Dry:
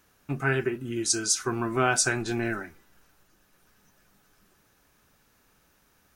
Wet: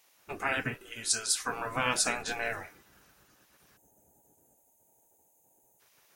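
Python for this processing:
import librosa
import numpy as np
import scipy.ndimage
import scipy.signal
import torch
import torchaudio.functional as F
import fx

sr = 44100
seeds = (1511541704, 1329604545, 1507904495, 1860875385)

y = fx.spec_gate(x, sr, threshold_db=-10, keep='weak')
y = fx.peak_eq(y, sr, hz=140.0, db=-14.0, octaves=2.4, at=(0.74, 1.49))
y = fx.spec_box(y, sr, start_s=3.77, length_s=2.03, low_hz=950.0, high_hz=6200.0, gain_db=-23)
y = F.gain(torch.from_numpy(y), 2.5).numpy()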